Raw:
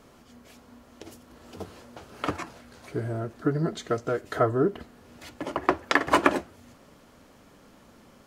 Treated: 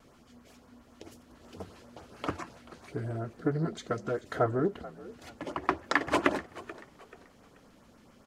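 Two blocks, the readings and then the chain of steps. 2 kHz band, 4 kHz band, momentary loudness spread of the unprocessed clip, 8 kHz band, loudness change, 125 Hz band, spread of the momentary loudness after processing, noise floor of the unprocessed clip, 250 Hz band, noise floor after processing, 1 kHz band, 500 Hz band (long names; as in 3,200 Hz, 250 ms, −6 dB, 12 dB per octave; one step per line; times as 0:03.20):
−4.5 dB, −5.5 dB, 22 LU, −6.0 dB, −5.0 dB, −3.5 dB, 23 LU, −55 dBFS, −4.5 dB, −59 dBFS, −5.5 dB, −5.0 dB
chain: high-shelf EQ 12,000 Hz −7.5 dB
auto-filter notch saw up 7.4 Hz 310–4,800 Hz
pitch vibrato 0.36 Hz 6.9 cents
on a send: echo with shifted repeats 434 ms, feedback 33%, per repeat +51 Hz, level −18 dB
on the sum: highs frequency-modulated by the lows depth 0.15 ms
level −3.5 dB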